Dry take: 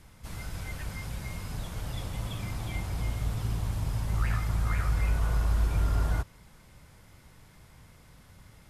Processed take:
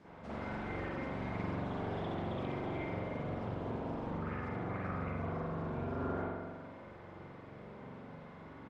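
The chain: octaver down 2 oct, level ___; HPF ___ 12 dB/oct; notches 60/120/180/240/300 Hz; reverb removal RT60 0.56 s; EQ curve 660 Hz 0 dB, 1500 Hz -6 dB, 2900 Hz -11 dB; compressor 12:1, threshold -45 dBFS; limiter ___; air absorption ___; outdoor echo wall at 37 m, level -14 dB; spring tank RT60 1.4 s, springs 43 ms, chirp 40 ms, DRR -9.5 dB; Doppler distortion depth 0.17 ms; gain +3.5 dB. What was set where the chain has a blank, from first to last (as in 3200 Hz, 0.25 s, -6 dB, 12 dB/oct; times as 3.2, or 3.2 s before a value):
+1 dB, 220 Hz, -42.5 dBFS, 130 m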